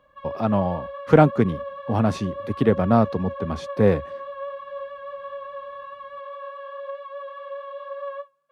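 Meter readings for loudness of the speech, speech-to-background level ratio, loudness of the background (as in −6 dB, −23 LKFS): −22.0 LKFS, 13.5 dB, −35.5 LKFS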